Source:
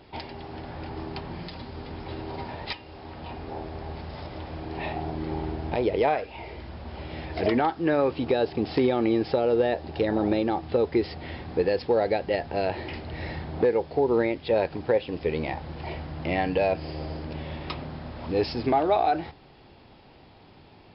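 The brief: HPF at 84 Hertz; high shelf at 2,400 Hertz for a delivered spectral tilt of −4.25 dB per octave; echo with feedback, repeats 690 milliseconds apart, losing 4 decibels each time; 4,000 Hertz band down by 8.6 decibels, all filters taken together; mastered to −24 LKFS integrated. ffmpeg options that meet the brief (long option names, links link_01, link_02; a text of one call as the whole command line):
ffmpeg -i in.wav -af "highpass=84,highshelf=frequency=2400:gain=-9,equalizer=frequency=4000:width_type=o:gain=-3,aecho=1:1:690|1380|2070|2760|3450|4140|4830|5520|6210:0.631|0.398|0.25|0.158|0.0994|0.0626|0.0394|0.0249|0.0157,volume=2dB" out.wav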